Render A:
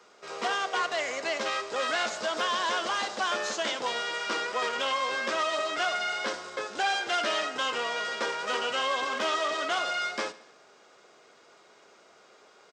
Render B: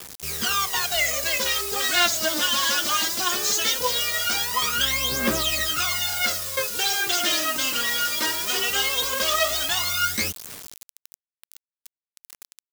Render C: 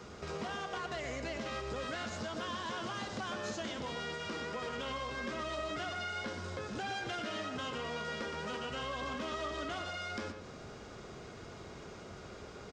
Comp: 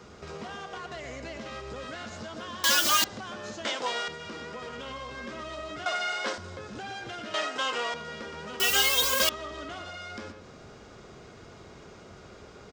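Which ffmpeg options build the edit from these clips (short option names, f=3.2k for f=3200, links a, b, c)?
-filter_complex "[1:a]asplit=2[a][b];[0:a]asplit=3[c][d][e];[2:a]asplit=6[f][g][h][i][j][k];[f]atrim=end=2.642[l];[a]atrim=start=2.638:end=3.042[m];[g]atrim=start=3.038:end=3.652[n];[c]atrim=start=3.648:end=4.082[o];[h]atrim=start=4.078:end=5.862[p];[d]atrim=start=5.858:end=6.382[q];[i]atrim=start=6.378:end=7.342[r];[e]atrim=start=7.338:end=7.942[s];[j]atrim=start=7.938:end=8.602[t];[b]atrim=start=8.598:end=9.292[u];[k]atrim=start=9.288[v];[l][m]acrossfade=d=0.004:c1=hsin:c2=hsin[w];[w][n]acrossfade=d=0.004:c1=hsin:c2=hsin[x];[x][o]acrossfade=d=0.004:c1=hsin:c2=hsin[y];[y][p]acrossfade=d=0.004:c1=hsin:c2=hsin[z];[z][q]acrossfade=d=0.004:c1=hsin:c2=hsin[aa];[aa][r]acrossfade=d=0.004:c1=hsin:c2=hsin[ab];[ab][s]acrossfade=d=0.004:c1=hsin:c2=hsin[ac];[ac][t]acrossfade=d=0.004:c1=hsin:c2=hsin[ad];[ad][u]acrossfade=d=0.004:c1=hsin:c2=hsin[ae];[ae][v]acrossfade=d=0.004:c1=hsin:c2=hsin"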